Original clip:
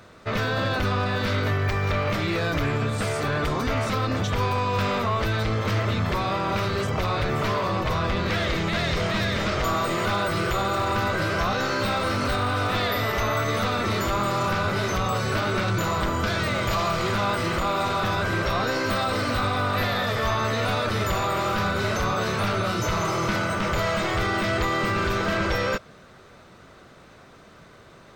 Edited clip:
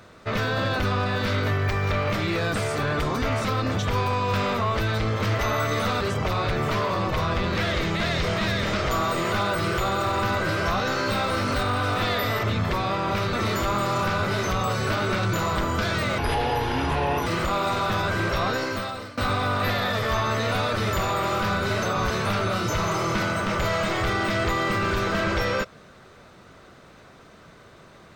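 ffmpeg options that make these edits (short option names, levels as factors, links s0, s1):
-filter_complex "[0:a]asplit=11[s0][s1][s2][s3][s4][s5][s6][s7][s8][s9][s10];[s0]atrim=end=2.542[s11];[s1]atrim=start=2.988:end=5.842[s12];[s2]atrim=start=13.158:end=13.782[s13];[s3]atrim=start=6.738:end=13.162[s14];[s4]atrim=start=5.838:end=6.742[s15];[s5]atrim=start=13.778:end=16.634[s16];[s6]atrim=start=16.63:end=17.4,asetpts=PTS-STARTPTS,asetrate=31311,aresample=44100[s17];[s7]atrim=start=17.396:end=19.31,asetpts=PTS-STARTPTS,afade=t=out:st=1.224:d=0.69:silence=0.0891251[s18];[s8]atrim=start=19.31:end=21.992,asetpts=PTS-STARTPTS,afade=t=in:d=0.004:c=hsin:silence=0.0891251[s19];[s9]atrim=start=21.988:end=22.242,asetpts=PTS-STARTPTS,areverse[s20];[s10]atrim=start=22.238[s21];[s11][s12]acrossfade=d=0.004:c1=hsin:c2=hsin[s22];[s22][s13]acrossfade=d=0.004:c1=hsin:c2=hsin[s23];[s23][s14]acrossfade=d=0.004:c1=hsin:c2=hsin[s24];[s24][s15]acrossfade=d=0.004:c1=hsin:c2=hsin[s25];[s25][s16]acrossfade=d=0.004:c1=hsin:c2=hsin[s26];[s26][s17]acrossfade=d=0.004:c1=hsin:c2=hsin[s27];[s18][s19]concat=n=2:v=0:a=1[s28];[s27][s28]acrossfade=d=0.004:c1=hsin:c2=hsin[s29];[s29][s20]acrossfade=d=0.004:c1=hsin:c2=hsin[s30];[s30][s21]acrossfade=d=0.004:c1=hsin:c2=hsin"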